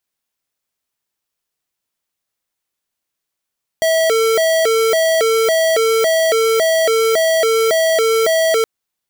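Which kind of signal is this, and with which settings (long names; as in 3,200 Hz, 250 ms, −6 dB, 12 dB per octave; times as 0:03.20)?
siren hi-lo 449–649 Hz 1.8 per second square −14 dBFS 4.82 s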